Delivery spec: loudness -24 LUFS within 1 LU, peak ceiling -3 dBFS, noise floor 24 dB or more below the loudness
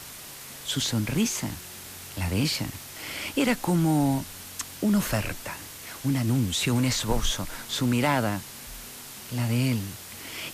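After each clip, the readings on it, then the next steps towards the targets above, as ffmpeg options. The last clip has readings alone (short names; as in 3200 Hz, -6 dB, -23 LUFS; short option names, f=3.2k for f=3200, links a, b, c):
noise floor -42 dBFS; noise floor target -51 dBFS; loudness -27.0 LUFS; peak -11.5 dBFS; loudness target -24.0 LUFS
-> -af "afftdn=nr=9:nf=-42"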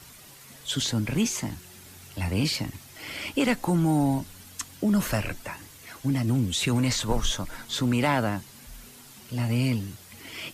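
noise floor -49 dBFS; noise floor target -51 dBFS
-> -af "afftdn=nr=6:nf=-49"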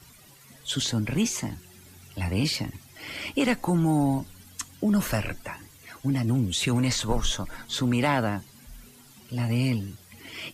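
noise floor -53 dBFS; loudness -27.0 LUFS; peak -11.5 dBFS; loudness target -24.0 LUFS
-> -af "volume=3dB"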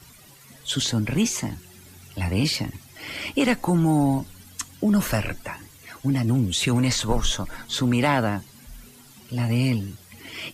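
loudness -24.0 LUFS; peak -8.5 dBFS; noise floor -50 dBFS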